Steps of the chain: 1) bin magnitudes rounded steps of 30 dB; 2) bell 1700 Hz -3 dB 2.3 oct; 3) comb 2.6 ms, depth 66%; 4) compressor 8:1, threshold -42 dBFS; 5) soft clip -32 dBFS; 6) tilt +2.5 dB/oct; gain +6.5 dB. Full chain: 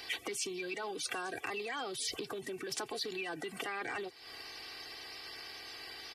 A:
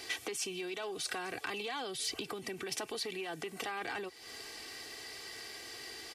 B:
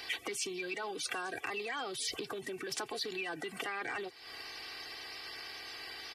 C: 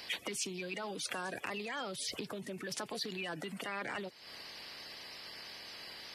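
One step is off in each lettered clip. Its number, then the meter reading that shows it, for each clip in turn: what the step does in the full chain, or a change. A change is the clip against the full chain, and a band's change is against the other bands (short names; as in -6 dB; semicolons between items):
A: 1, 125 Hz band +2.0 dB; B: 2, momentary loudness spread change -1 LU; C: 3, 125 Hz band +8.0 dB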